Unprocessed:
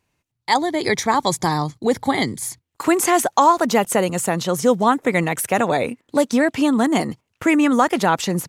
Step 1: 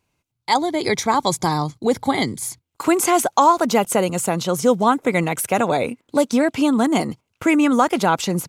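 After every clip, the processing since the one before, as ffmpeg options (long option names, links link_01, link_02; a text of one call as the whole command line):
ffmpeg -i in.wav -af "bandreject=frequency=1800:width=7.1" out.wav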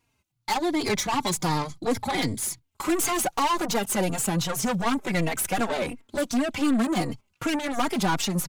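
ffmpeg -i in.wav -filter_complex "[0:a]equalizer=frequency=500:width_type=o:width=0.79:gain=-5,aeval=exprs='(tanh(14.1*val(0)+0.35)-tanh(0.35))/14.1':channel_layout=same,asplit=2[link_01][link_02];[link_02]adelay=3.7,afreqshift=-2.7[link_03];[link_01][link_03]amix=inputs=2:normalize=1,volume=4.5dB" out.wav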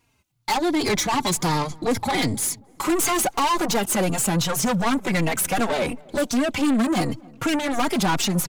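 ffmpeg -i in.wav -filter_complex "[0:a]asoftclip=type=tanh:threshold=-21.5dB,asplit=2[link_01][link_02];[link_02]adelay=269,lowpass=frequency=870:poles=1,volume=-23dB,asplit=2[link_03][link_04];[link_04]adelay=269,lowpass=frequency=870:poles=1,volume=0.49,asplit=2[link_05][link_06];[link_06]adelay=269,lowpass=frequency=870:poles=1,volume=0.49[link_07];[link_01][link_03][link_05][link_07]amix=inputs=4:normalize=0,volume=6dB" out.wav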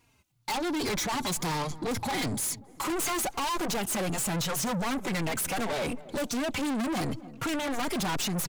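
ffmpeg -i in.wav -af "asoftclip=type=tanh:threshold=-28dB" out.wav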